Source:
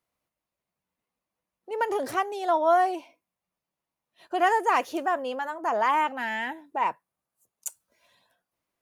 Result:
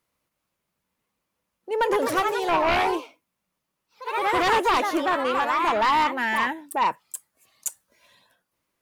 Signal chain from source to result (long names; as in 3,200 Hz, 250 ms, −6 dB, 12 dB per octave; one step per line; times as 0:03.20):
delay with pitch and tempo change per echo 315 ms, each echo +2 semitones, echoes 3, each echo −6 dB
in parallel at −3 dB: sine wavefolder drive 10 dB, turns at −9 dBFS
on the sum: parametric band 710 Hz −6.5 dB 0.33 octaves
level −6.5 dB